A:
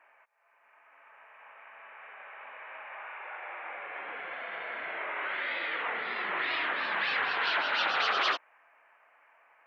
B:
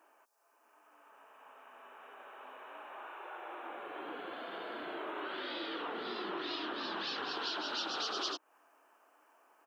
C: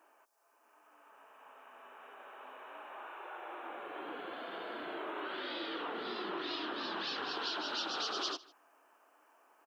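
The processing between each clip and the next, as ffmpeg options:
-af "firequalizer=gain_entry='entry(120,0);entry(320,14);entry(520,0);entry(1400,-3);entry(2100,-16);entry(3000,1);entry(5300,14)':delay=0.05:min_phase=1,acompressor=threshold=0.0158:ratio=3,volume=0.891"
-af "aecho=1:1:153:0.0794"

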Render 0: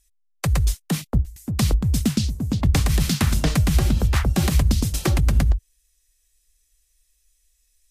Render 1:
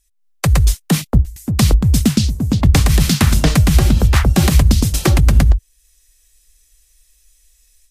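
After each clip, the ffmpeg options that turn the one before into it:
-af "dynaudnorm=f=140:g=3:m=3.55"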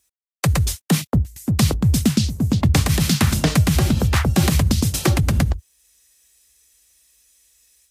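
-filter_complex "[0:a]highpass=f=74:w=0.5412,highpass=f=74:w=1.3066,asplit=2[s0][s1];[s1]alimiter=limit=0.282:level=0:latency=1:release=272,volume=0.794[s2];[s0][s2]amix=inputs=2:normalize=0,acrusher=bits=10:mix=0:aa=0.000001,volume=0.531"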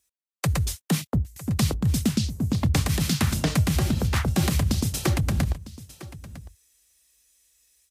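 -af "aecho=1:1:954:0.141,volume=0.501"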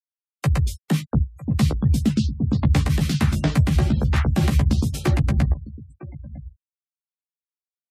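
-filter_complex "[0:a]afftfilt=real='re*gte(hypot(re,im),0.0158)':imag='im*gte(hypot(re,im),0.0158)':win_size=1024:overlap=0.75,bass=f=250:g=3,treble=f=4000:g=-7,asplit=2[s0][s1];[s1]adelay=14,volume=0.562[s2];[s0][s2]amix=inputs=2:normalize=0"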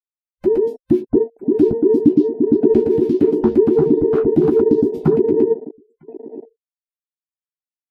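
-af "afftfilt=real='real(if(between(b,1,1008),(2*floor((b-1)/24)+1)*24-b,b),0)':imag='imag(if(between(b,1,1008),(2*floor((b-1)/24)+1)*24-b,b),0)*if(between(b,1,1008),-1,1)':win_size=2048:overlap=0.75,afwtdn=0.0562,equalizer=f=125:t=o:w=1:g=7,equalizer=f=250:t=o:w=1:g=9,equalizer=f=8000:t=o:w=1:g=-9"

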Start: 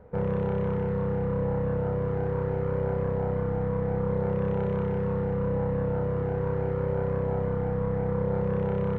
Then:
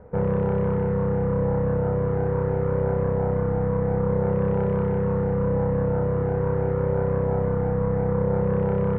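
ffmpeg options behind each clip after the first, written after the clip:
-af "lowpass=2100,volume=1.68"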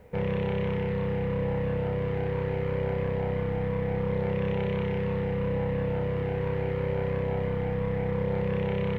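-af "aexciter=amount=7.7:drive=8.2:freq=2100,volume=0.531"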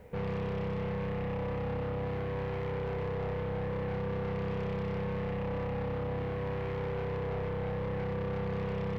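-af "asoftclip=type=tanh:threshold=0.0282"

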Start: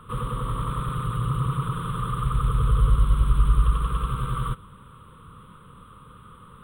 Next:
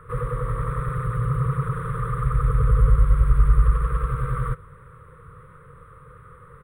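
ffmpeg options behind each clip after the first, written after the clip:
-af "firequalizer=gain_entry='entry(150,0);entry(210,-17);entry(480,6);entry(770,-9);entry(1900,7);entry(3000,-19);entry(5600,-8)':delay=0.05:min_phase=1,volume=1.33"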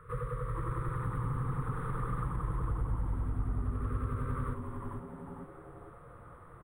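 -filter_complex "[0:a]acompressor=threshold=0.0631:ratio=5,asplit=2[s0][s1];[s1]asplit=6[s2][s3][s4][s5][s6][s7];[s2]adelay=453,afreqshift=-150,volume=0.562[s8];[s3]adelay=906,afreqshift=-300,volume=0.254[s9];[s4]adelay=1359,afreqshift=-450,volume=0.114[s10];[s5]adelay=1812,afreqshift=-600,volume=0.0513[s11];[s6]adelay=2265,afreqshift=-750,volume=0.0232[s12];[s7]adelay=2718,afreqshift=-900,volume=0.0104[s13];[s8][s9][s10][s11][s12][s13]amix=inputs=6:normalize=0[s14];[s0][s14]amix=inputs=2:normalize=0,volume=0.422"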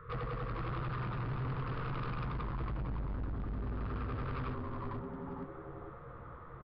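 -filter_complex "[0:a]asoftclip=type=hard:threshold=0.0126,asplit=2[s0][s1];[s1]adelay=15,volume=0.282[s2];[s0][s2]amix=inputs=2:normalize=0,aresample=11025,aresample=44100,volume=1.33"

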